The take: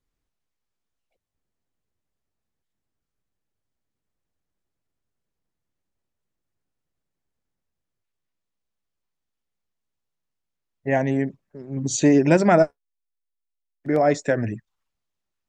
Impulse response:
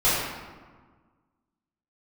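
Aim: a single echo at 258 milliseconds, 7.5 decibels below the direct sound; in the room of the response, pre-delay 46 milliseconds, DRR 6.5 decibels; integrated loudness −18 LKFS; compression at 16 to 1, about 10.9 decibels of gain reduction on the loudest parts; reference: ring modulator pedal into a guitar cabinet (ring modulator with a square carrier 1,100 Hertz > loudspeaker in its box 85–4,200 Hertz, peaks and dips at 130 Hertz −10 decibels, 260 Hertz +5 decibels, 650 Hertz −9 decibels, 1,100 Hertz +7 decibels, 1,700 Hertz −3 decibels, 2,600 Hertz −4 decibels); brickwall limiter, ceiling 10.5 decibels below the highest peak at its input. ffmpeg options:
-filter_complex "[0:a]acompressor=threshold=-22dB:ratio=16,alimiter=limit=-22.5dB:level=0:latency=1,aecho=1:1:258:0.422,asplit=2[link_01][link_02];[1:a]atrim=start_sample=2205,adelay=46[link_03];[link_02][link_03]afir=irnorm=-1:irlink=0,volume=-23.5dB[link_04];[link_01][link_04]amix=inputs=2:normalize=0,aeval=exprs='val(0)*sgn(sin(2*PI*1100*n/s))':channel_layout=same,highpass=85,equalizer=frequency=130:width_type=q:width=4:gain=-10,equalizer=frequency=260:width_type=q:width=4:gain=5,equalizer=frequency=650:width_type=q:width=4:gain=-9,equalizer=frequency=1100:width_type=q:width=4:gain=7,equalizer=frequency=1700:width_type=q:width=4:gain=-3,equalizer=frequency=2600:width_type=q:width=4:gain=-4,lowpass=frequency=4200:width=0.5412,lowpass=frequency=4200:width=1.3066,volume=13.5dB"

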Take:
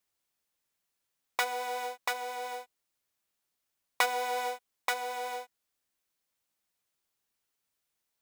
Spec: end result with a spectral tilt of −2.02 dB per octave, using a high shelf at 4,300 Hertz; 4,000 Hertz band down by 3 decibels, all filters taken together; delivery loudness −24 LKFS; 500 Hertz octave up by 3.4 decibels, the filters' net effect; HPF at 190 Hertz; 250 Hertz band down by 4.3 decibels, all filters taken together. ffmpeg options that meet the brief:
ffmpeg -i in.wav -af "highpass=190,equalizer=frequency=250:width_type=o:gain=-4.5,equalizer=frequency=500:width_type=o:gain=4.5,equalizer=frequency=4000:width_type=o:gain=-6.5,highshelf=frequency=4300:gain=4.5,volume=9dB" out.wav

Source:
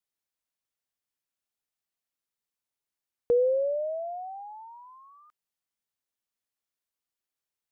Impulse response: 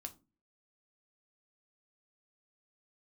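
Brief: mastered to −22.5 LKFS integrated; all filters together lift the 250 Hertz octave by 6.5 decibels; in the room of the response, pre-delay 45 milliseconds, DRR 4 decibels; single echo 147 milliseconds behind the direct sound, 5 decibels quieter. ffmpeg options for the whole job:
-filter_complex "[0:a]equalizer=frequency=250:width_type=o:gain=9,aecho=1:1:147:0.562,asplit=2[link_01][link_02];[1:a]atrim=start_sample=2205,adelay=45[link_03];[link_02][link_03]afir=irnorm=-1:irlink=0,volume=0.5dB[link_04];[link_01][link_04]amix=inputs=2:normalize=0,volume=2dB"

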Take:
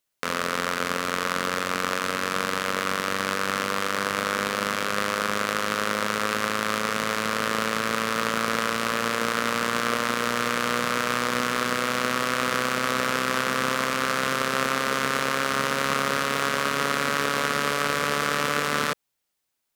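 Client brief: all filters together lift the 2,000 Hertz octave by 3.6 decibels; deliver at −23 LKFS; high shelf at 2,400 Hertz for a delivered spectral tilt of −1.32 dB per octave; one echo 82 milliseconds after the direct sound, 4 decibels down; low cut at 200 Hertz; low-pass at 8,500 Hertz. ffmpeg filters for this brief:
ffmpeg -i in.wav -af "highpass=200,lowpass=8500,equalizer=frequency=2000:width_type=o:gain=3,highshelf=frequency=2400:gain=3.5,aecho=1:1:82:0.631,volume=-2dB" out.wav

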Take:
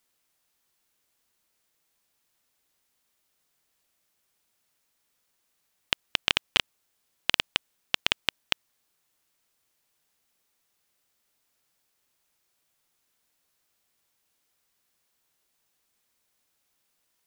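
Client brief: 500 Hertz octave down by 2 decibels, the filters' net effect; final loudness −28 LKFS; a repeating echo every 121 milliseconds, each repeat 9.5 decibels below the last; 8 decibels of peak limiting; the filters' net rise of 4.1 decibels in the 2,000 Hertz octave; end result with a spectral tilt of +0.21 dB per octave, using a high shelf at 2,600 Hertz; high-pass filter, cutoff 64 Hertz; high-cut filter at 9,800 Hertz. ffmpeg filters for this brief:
ffmpeg -i in.wav -af "highpass=64,lowpass=9800,equalizer=frequency=500:width_type=o:gain=-3,equalizer=frequency=2000:width_type=o:gain=3,highshelf=frequency=2600:gain=4.5,alimiter=limit=-6dB:level=0:latency=1,aecho=1:1:121|242|363|484:0.335|0.111|0.0365|0.012,volume=4dB" out.wav

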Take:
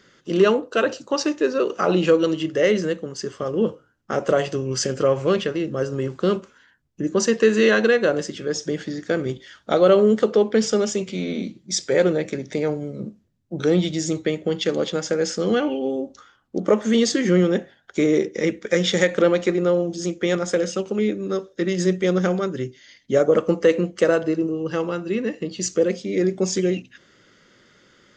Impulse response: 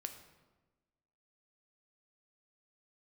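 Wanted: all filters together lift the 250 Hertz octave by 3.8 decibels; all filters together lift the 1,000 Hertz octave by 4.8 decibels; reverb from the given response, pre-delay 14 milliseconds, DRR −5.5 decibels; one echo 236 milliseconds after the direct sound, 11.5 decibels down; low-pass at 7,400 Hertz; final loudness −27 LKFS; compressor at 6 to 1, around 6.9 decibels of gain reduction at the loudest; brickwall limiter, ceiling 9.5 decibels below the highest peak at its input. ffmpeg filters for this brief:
-filter_complex "[0:a]lowpass=7400,equalizer=frequency=250:width_type=o:gain=5,equalizer=frequency=1000:width_type=o:gain=6.5,acompressor=threshold=-16dB:ratio=6,alimiter=limit=-15dB:level=0:latency=1,aecho=1:1:236:0.266,asplit=2[link_01][link_02];[1:a]atrim=start_sample=2205,adelay=14[link_03];[link_02][link_03]afir=irnorm=-1:irlink=0,volume=8dB[link_04];[link_01][link_04]amix=inputs=2:normalize=0,volume=-8.5dB"

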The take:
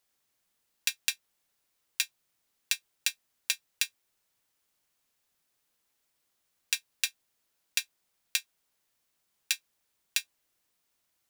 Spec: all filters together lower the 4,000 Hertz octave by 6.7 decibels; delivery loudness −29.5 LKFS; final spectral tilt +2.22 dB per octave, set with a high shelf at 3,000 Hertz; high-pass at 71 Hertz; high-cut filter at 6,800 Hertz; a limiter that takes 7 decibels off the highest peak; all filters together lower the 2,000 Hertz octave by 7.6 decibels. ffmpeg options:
ffmpeg -i in.wav -af "highpass=71,lowpass=6800,equalizer=frequency=2000:width_type=o:gain=-9,highshelf=frequency=3000:gain=4.5,equalizer=frequency=4000:width_type=o:gain=-9,volume=15dB,alimiter=limit=-3dB:level=0:latency=1" out.wav

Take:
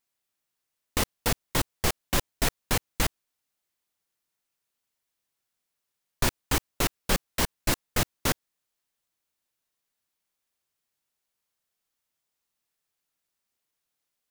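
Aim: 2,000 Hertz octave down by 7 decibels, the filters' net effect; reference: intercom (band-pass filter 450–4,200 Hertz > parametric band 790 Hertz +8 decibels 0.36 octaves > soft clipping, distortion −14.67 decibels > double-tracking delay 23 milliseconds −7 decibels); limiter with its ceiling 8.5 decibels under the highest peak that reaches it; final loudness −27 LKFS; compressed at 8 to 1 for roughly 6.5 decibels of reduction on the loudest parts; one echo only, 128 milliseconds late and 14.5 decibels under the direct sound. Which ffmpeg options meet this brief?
ffmpeg -i in.wav -filter_complex "[0:a]equalizer=frequency=2000:width_type=o:gain=-9,acompressor=threshold=-27dB:ratio=8,alimiter=limit=-22dB:level=0:latency=1,highpass=450,lowpass=4200,equalizer=frequency=790:width_type=o:width=0.36:gain=8,aecho=1:1:128:0.188,asoftclip=threshold=-33dB,asplit=2[link_01][link_02];[link_02]adelay=23,volume=-7dB[link_03];[link_01][link_03]amix=inputs=2:normalize=0,volume=17.5dB" out.wav

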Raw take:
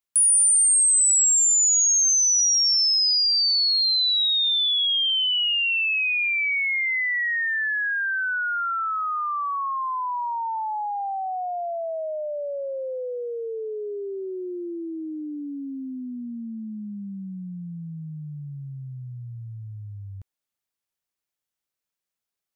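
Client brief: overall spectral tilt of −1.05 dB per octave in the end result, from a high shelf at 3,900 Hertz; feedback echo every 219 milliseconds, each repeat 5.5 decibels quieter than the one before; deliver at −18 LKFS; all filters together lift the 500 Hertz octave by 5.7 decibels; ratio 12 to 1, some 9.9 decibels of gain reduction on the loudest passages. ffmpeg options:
ffmpeg -i in.wav -af "equalizer=frequency=500:width_type=o:gain=7,highshelf=frequency=3900:gain=6,acompressor=threshold=-22dB:ratio=12,aecho=1:1:219|438|657|876|1095|1314|1533:0.531|0.281|0.149|0.079|0.0419|0.0222|0.0118,volume=3.5dB" out.wav

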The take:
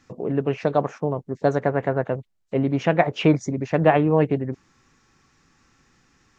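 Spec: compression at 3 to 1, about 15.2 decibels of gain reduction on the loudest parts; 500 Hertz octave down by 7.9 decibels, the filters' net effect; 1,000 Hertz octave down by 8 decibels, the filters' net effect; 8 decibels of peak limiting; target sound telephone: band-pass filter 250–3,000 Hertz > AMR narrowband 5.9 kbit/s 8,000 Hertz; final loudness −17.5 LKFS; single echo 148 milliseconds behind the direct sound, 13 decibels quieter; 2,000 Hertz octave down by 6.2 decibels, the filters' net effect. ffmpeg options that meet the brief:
ffmpeg -i in.wav -af "equalizer=frequency=500:width_type=o:gain=-7,equalizer=frequency=1000:width_type=o:gain=-7.5,equalizer=frequency=2000:width_type=o:gain=-4,acompressor=threshold=-37dB:ratio=3,alimiter=level_in=5.5dB:limit=-24dB:level=0:latency=1,volume=-5.5dB,highpass=250,lowpass=3000,aecho=1:1:148:0.224,volume=27.5dB" -ar 8000 -c:a libopencore_amrnb -b:a 5900 out.amr

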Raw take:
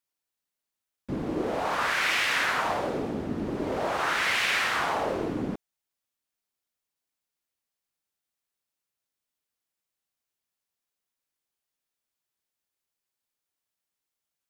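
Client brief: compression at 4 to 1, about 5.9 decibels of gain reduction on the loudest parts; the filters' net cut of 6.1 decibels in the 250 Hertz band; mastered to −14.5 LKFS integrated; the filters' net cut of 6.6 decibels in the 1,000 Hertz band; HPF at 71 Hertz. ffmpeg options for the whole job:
ffmpeg -i in.wav -af "highpass=71,equalizer=frequency=250:width_type=o:gain=-7.5,equalizer=frequency=1000:width_type=o:gain=-8.5,acompressor=threshold=-31dB:ratio=4,volume=19.5dB" out.wav

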